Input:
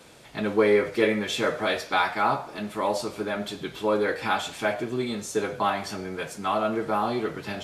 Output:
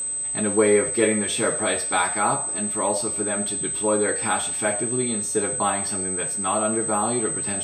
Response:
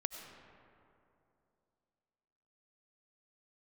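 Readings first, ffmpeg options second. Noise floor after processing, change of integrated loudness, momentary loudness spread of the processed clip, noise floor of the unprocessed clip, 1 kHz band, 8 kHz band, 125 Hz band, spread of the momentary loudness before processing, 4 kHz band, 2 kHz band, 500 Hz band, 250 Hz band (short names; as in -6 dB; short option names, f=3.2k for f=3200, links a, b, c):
-28 dBFS, +4.5 dB, 4 LU, -44 dBFS, +0.5 dB, +22.0 dB, +3.0 dB, 9 LU, 0.0 dB, +0.5 dB, +2.0 dB, +2.5 dB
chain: -af "lowshelf=f=480:g=3.5,aeval=exprs='val(0)+0.0562*sin(2*PI*8200*n/s)':c=same"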